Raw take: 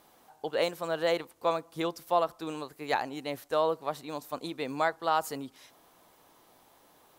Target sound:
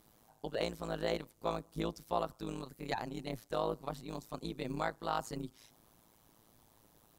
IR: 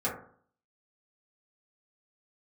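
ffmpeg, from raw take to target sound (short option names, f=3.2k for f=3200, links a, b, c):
-filter_complex "[0:a]acrossover=split=8000[a][b];[b]acompressor=threshold=-57dB:ratio=4:attack=1:release=60[c];[a][c]amix=inputs=2:normalize=0,bass=f=250:g=15,treble=f=4k:g=6,tremolo=f=110:d=0.947,volume=-5dB"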